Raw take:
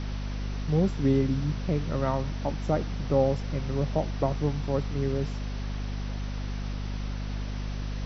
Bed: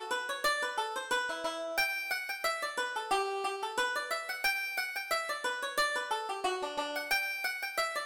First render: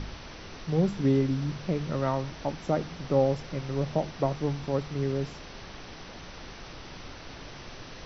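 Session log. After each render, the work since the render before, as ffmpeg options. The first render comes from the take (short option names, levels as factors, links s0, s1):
-af "bandreject=f=50:t=h:w=4,bandreject=f=100:t=h:w=4,bandreject=f=150:t=h:w=4,bandreject=f=200:t=h:w=4,bandreject=f=250:t=h:w=4"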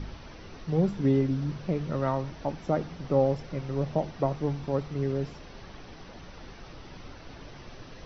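-af "afftdn=nr=7:nf=-44"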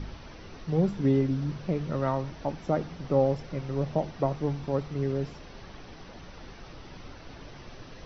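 -af anull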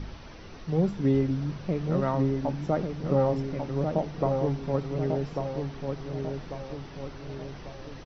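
-filter_complex "[0:a]asplit=2[s0][s1];[s1]adelay=1144,lowpass=f=1800:p=1,volume=0.596,asplit=2[s2][s3];[s3]adelay=1144,lowpass=f=1800:p=1,volume=0.48,asplit=2[s4][s5];[s5]adelay=1144,lowpass=f=1800:p=1,volume=0.48,asplit=2[s6][s7];[s7]adelay=1144,lowpass=f=1800:p=1,volume=0.48,asplit=2[s8][s9];[s9]adelay=1144,lowpass=f=1800:p=1,volume=0.48,asplit=2[s10][s11];[s11]adelay=1144,lowpass=f=1800:p=1,volume=0.48[s12];[s0][s2][s4][s6][s8][s10][s12]amix=inputs=7:normalize=0"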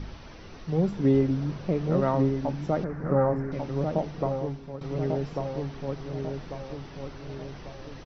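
-filter_complex "[0:a]asettb=1/sr,asplit=3[s0][s1][s2];[s0]atrim=end=0.924[s3];[s1]atrim=start=0.92:end=2.29,asetpts=PTS-STARTPTS,afade=t=in:d=0.004:c=qsin,afade=t=out:st=1.366:d=0.004:c=qsin,equalizer=f=480:w=0.6:g=3.5[s4];[s2]atrim=start=2.286[s5];[s3][s4]acrossfade=d=0.004:c1=hsin:c2=qsin[s6];[s6][s5]acrossfade=d=0.004:c1=qsin:c2=hsin,asettb=1/sr,asplit=3[s7][s8][s9];[s7]atrim=end=2.844[s10];[s8]atrim=start=2.84:end=3.52,asetpts=PTS-STARTPTS,afade=t=in:d=0.004:c=qsin,afade=t=out:st=0.676:d=0.004:c=qsin,highshelf=f=2300:t=q:w=3:g=-12[s11];[s9]atrim=start=3.516[s12];[s10][s11]acrossfade=d=0.004:c1=hsin:c2=qsin[s13];[s13][s12]acrossfade=d=0.004:c1=qsin:c2=hsin,asplit=2[s14][s15];[s14]atrim=end=4.81,asetpts=PTS-STARTPTS,afade=t=out:st=4.09:d=0.72:silence=0.211349[s16];[s15]atrim=start=4.81,asetpts=PTS-STARTPTS,afade=t=in:d=0.004:c=hsin:silence=0.211349[s17];[s16][s17]concat=n=2:v=0:a=1"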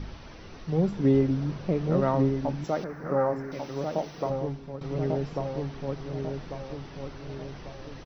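-filter_complex "[0:a]asettb=1/sr,asplit=3[s0][s1][s2];[s0]atrim=end=2.644[s3];[s1]atrim=start=2.64:end=4.3,asetpts=PTS-STARTPTS,afade=t=in:d=0.004:c=qsin,afade=t=out:st=1.656:d=0.004:c=qsin,aemphasis=mode=production:type=bsi[s4];[s2]atrim=start=4.296[s5];[s3][s4]acrossfade=d=0.004:c1=hsin:c2=qsin[s6];[s6][s5]acrossfade=d=0.004:c1=qsin:c2=hsin"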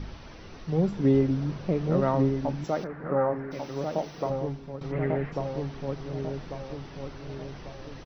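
-filter_complex "[0:a]asettb=1/sr,asplit=3[s0][s1][s2];[s0]atrim=end=2.874[s3];[s1]atrim=start=2.87:end=3.51,asetpts=PTS-STARTPTS,afade=t=in:d=0.004:c=qsin,afade=t=out:st=0.636:d=0.004:c=qsin,lowpass=f=3400:w=0.5412,lowpass=f=3400:w=1.3066[s4];[s2]atrim=start=3.506[s5];[s3][s4]acrossfade=d=0.004:c1=hsin:c2=qsin[s6];[s6][s5]acrossfade=d=0.004:c1=qsin:c2=hsin,asplit=3[s7][s8][s9];[s7]afade=t=out:st=4.91:d=0.02[s10];[s8]lowpass=f=2000:t=q:w=3.7,afade=t=in:st=4.91:d=0.02,afade=t=out:st=5.31:d=0.02[s11];[s9]afade=t=in:st=5.31:d=0.02[s12];[s10][s11][s12]amix=inputs=3:normalize=0"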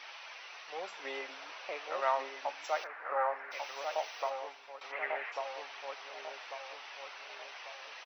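-af "highpass=f=720:w=0.5412,highpass=f=720:w=1.3066,equalizer=f=2500:w=1.8:g=8"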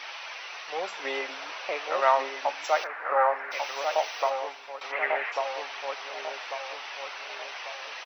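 -af "volume=2.82"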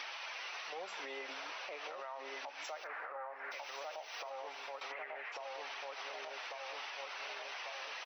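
-af "acompressor=threshold=0.0178:ratio=6,alimiter=level_in=3.76:limit=0.0631:level=0:latency=1:release=146,volume=0.266"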